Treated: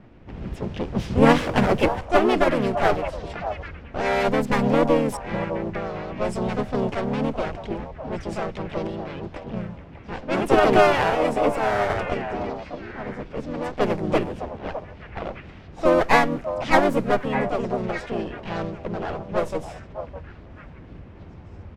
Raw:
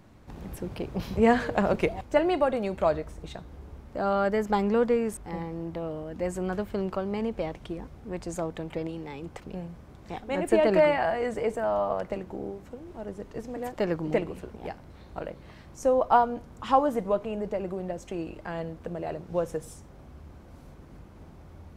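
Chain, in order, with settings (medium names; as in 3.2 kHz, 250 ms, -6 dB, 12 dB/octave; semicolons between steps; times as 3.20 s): comb filter that takes the minimum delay 0.39 ms; harmony voices -7 st -4 dB, +3 st -2 dB; repeats whose band climbs or falls 610 ms, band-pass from 760 Hz, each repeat 1.4 oct, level -7 dB; level-controlled noise filter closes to 2.5 kHz, open at -21 dBFS; trim +3.5 dB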